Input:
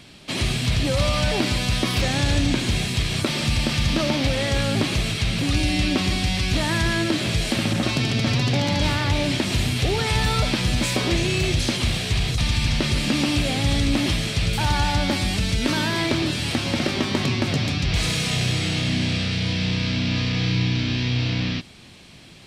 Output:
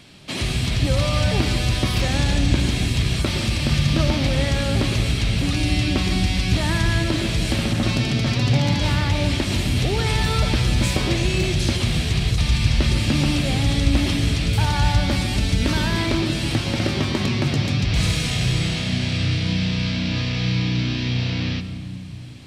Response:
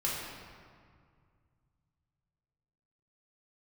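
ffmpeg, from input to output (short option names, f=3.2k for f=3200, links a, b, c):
-filter_complex "[0:a]asplit=2[a][b];[b]equalizer=f=80:w=0.31:g=13.5[c];[1:a]atrim=start_sample=2205,adelay=115[d];[c][d]afir=irnorm=-1:irlink=0,volume=-18.5dB[e];[a][e]amix=inputs=2:normalize=0,volume=-1dB"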